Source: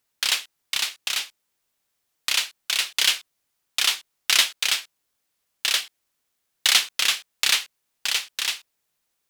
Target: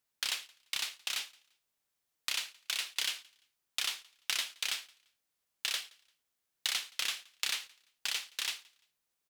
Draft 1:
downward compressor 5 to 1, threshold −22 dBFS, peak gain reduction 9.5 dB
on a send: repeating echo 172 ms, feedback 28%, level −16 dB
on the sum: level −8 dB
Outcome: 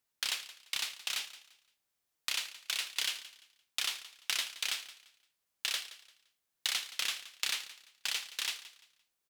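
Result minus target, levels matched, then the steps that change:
echo-to-direct +10 dB
change: repeating echo 172 ms, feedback 28%, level −26 dB

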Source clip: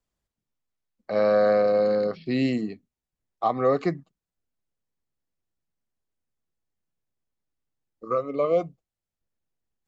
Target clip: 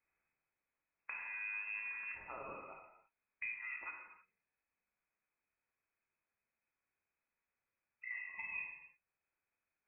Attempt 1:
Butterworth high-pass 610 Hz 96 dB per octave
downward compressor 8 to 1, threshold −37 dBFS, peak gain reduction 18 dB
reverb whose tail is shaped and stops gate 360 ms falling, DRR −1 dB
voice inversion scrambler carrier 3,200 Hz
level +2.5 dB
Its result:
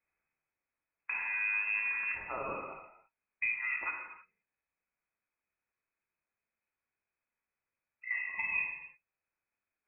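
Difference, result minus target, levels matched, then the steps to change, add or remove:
downward compressor: peak gain reduction −10 dB
change: downward compressor 8 to 1, threshold −48.5 dBFS, peak gain reduction 28 dB

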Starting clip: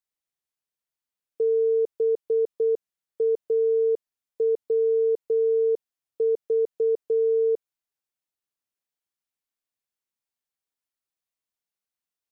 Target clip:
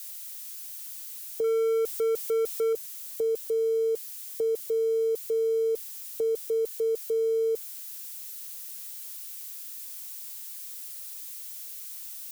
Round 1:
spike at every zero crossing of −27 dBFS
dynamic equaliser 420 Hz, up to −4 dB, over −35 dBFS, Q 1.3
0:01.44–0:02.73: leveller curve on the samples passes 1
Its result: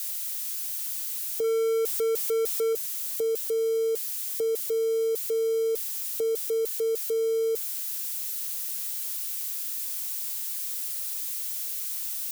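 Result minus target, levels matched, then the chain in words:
spike at every zero crossing: distortion +8 dB
spike at every zero crossing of −35 dBFS
dynamic equaliser 420 Hz, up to −4 dB, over −35 dBFS, Q 1.3
0:01.44–0:02.73: leveller curve on the samples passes 1

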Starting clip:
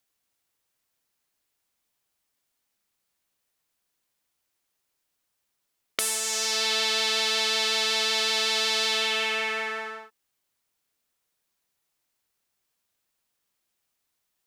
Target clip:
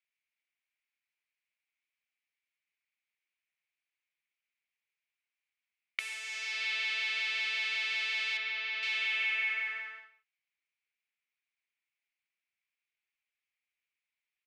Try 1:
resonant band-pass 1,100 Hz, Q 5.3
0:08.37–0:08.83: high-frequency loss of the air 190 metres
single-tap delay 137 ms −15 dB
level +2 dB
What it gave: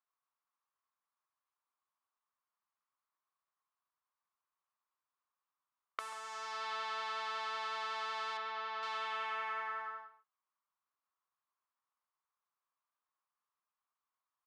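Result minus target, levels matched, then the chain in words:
1,000 Hz band +19.5 dB
resonant band-pass 2,300 Hz, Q 5.3
0:08.37–0:08.83: high-frequency loss of the air 190 metres
single-tap delay 137 ms −15 dB
level +2 dB

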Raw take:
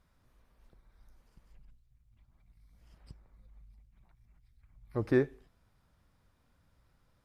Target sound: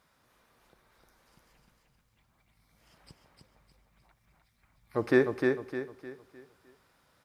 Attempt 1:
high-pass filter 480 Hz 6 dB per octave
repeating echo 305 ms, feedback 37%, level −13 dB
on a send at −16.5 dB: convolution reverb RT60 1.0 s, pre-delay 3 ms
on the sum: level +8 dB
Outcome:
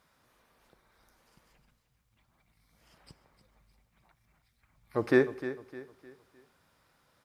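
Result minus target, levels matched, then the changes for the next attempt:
echo-to-direct −8 dB
change: repeating echo 305 ms, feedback 37%, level −4 dB

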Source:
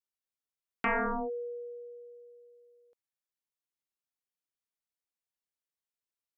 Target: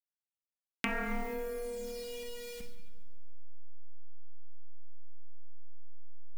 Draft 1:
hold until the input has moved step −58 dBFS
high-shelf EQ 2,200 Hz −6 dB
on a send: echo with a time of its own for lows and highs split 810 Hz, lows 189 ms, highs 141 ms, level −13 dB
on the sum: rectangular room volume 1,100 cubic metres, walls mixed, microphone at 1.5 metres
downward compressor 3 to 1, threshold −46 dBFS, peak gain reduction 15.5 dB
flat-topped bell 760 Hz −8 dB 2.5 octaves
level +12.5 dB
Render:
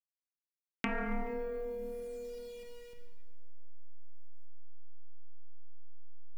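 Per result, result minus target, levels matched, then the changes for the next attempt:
4,000 Hz band −6.5 dB; hold until the input has moved: distortion −8 dB
change: high-shelf EQ 2,200 Hz +4 dB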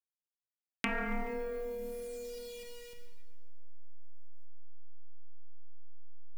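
hold until the input has moved: distortion −8 dB
change: hold until the input has moved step −50.5 dBFS

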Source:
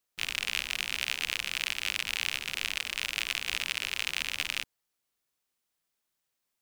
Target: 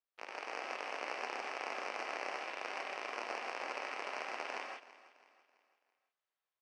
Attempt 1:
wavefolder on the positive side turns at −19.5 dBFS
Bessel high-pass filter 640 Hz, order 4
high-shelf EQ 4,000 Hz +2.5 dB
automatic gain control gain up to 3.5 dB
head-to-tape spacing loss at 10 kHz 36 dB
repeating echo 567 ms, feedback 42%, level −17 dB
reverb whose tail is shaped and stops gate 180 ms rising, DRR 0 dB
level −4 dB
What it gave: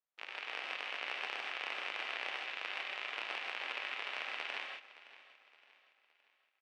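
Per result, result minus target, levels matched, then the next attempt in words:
echo 236 ms late; wavefolder on the positive side: distortion −11 dB
wavefolder on the positive side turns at −19.5 dBFS
Bessel high-pass filter 640 Hz, order 4
high-shelf EQ 4,000 Hz +2.5 dB
automatic gain control gain up to 3.5 dB
head-to-tape spacing loss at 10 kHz 36 dB
repeating echo 331 ms, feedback 42%, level −17 dB
reverb whose tail is shaped and stops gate 180 ms rising, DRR 0 dB
level −4 dB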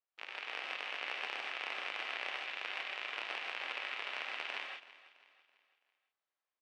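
wavefolder on the positive side: distortion −11 dB
wavefolder on the positive side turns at −28.5 dBFS
Bessel high-pass filter 640 Hz, order 4
high-shelf EQ 4,000 Hz +2.5 dB
automatic gain control gain up to 3.5 dB
head-to-tape spacing loss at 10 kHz 36 dB
repeating echo 331 ms, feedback 42%, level −17 dB
reverb whose tail is shaped and stops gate 180 ms rising, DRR 0 dB
level −4 dB

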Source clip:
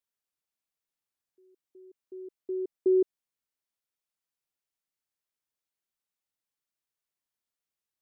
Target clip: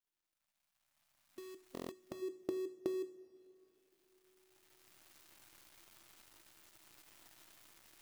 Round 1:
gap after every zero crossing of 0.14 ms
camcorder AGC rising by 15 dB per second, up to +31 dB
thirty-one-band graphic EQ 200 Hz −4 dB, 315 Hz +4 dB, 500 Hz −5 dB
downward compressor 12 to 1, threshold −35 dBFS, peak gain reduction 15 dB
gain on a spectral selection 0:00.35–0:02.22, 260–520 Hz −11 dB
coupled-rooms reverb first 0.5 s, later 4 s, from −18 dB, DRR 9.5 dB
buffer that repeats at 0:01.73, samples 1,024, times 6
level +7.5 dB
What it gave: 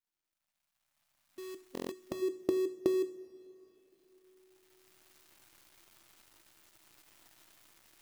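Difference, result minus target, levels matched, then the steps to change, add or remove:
downward compressor: peak gain reduction −8.5 dB
change: downward compressor 12 to 1, threshold −44.5 dBFS, peak gain reduction 23.5 dB

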